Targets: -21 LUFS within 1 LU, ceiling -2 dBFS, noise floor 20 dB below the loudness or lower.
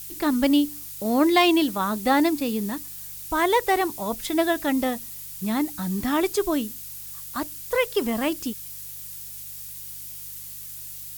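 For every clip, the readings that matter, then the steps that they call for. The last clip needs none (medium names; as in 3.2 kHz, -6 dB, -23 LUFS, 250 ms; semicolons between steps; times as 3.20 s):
hum 50 Hz; highest harmonic 150 Hz; hum level -53 dBFS; noise floor -38 dBFS; noise floor target -45 dBFS; loudness -25.0 LUFS; peak level -6.5 dBFS; loudness target -21.0 LUFS
-> de-hum 50 Hz, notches 3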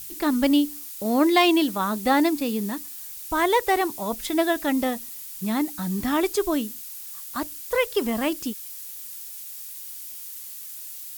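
hum not found; noise floor -38 dBFS; noise floor target -45 dBFS
-> noise print and reduce 7 dB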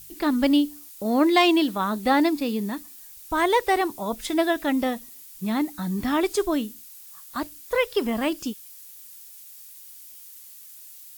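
noise floor -45 dBFS; loudness -24.0 LUFS; peak level -7.0 dBFS; loudness target -21.0 LUFS
-> trim +3 dB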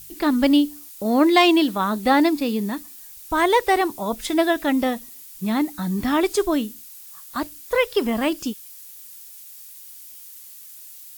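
loudness -21.0 LUFS; peak level -4.0 dBFS; noise floor -42 dBFS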